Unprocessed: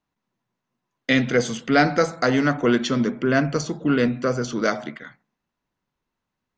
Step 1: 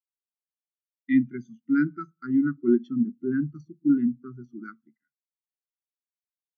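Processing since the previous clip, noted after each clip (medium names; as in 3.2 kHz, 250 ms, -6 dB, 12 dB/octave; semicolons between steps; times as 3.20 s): elliptic band-stop 380–1100 Hz; spectral contrast expander 2.5:1; trim -4 dB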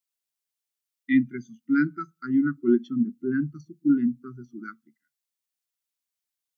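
treble shelf 2 kHz +9.5 dB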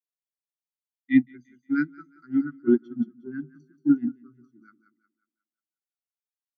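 on a send: thinning echo 180 ms, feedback 41%, high-pass 180 Hz, level -10 dB; on the sum: upward expansion 2.5:1, over -29 dBFS; trim +3.5 dB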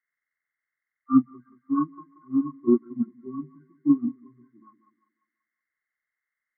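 knee-point frequency compression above 1 kHz 4:1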